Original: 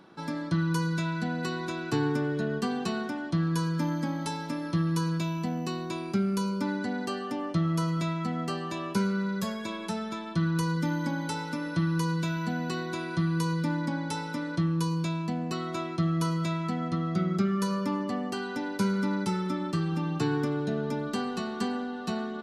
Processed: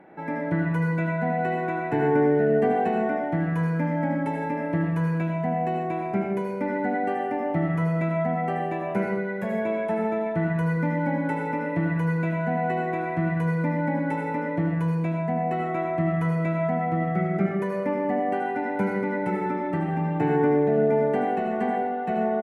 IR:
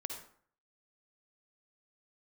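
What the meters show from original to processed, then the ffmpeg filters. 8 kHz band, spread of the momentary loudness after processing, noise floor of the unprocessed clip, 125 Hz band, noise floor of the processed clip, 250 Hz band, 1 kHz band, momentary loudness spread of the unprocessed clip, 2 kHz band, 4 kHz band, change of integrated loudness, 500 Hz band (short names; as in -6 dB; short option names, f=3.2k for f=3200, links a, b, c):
under -15 dB, 6 LU, -37 dBFS, +3.0 dB, -29 dBFS, +2.5 dB, +8.0 dB, 6 LU, +5.0 dB, under -10 dB, +4.5 dB, +10.0 dB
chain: -filter_complex "[0:a]firequalizer=gain_entry='entry(120,0);entry(780,12);entry(1100,-6);entry(2000,11);entry(3000,-9);entry(4400,-25);entry(9800,-14)':delay=0.05:min_phase=1[a];[1:a]atrim=start_sample=2205,asetrate=31311,aresample=44100[b];[a][b]afir=irnorm=-1:irlink=0"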